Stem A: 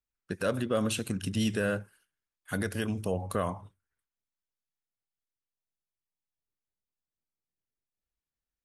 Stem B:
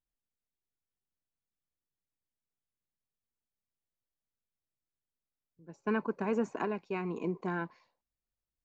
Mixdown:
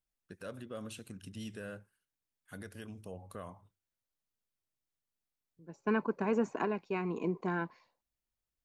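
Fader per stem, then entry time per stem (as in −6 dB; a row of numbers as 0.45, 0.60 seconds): −15.0, +0.5 decibels; 0.00, 0.00 seconds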